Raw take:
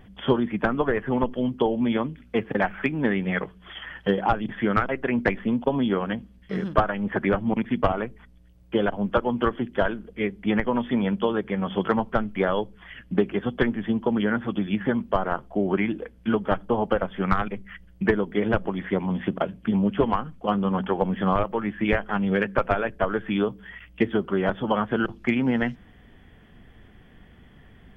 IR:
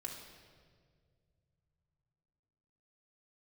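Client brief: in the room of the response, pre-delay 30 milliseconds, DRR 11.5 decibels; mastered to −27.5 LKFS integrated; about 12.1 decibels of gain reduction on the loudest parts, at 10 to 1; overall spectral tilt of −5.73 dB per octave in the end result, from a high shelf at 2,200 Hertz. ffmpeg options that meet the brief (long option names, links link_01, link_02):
-filter_complex "[0:a]highshelf=frequency=2200:gain=-3.5,acompressor=threshold=-28dB:ratio=10,asplit=2[link_01][link_02];[1:a]atrim=start_sample=2205,adelay=30[link_03];[link_02][link_03]afir=irnorm=-1:irlink=0,volume=-9.5dB[link_04];[link_01][link_04]amix=inputs=2:normalize=0,volume=6dB"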